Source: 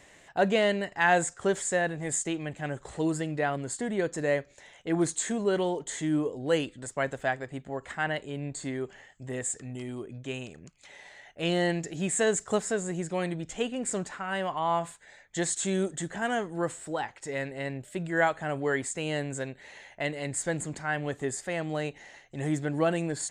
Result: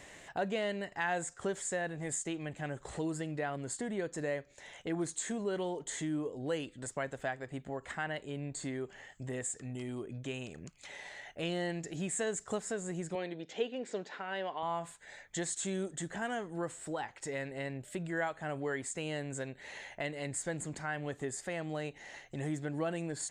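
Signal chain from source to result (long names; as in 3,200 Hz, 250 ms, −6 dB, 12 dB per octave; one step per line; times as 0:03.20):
downward compressor 2 to 1, threshold −44 dBFS, peak gain reduction 14 dB
0:13.15–0:14.63: loudspeaker in its box 260–5,300 Hz, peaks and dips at 450 Hz +6 dB, 1,200 Hz −7 dB, 3,700 Hz +4 dB
level +2.5 dB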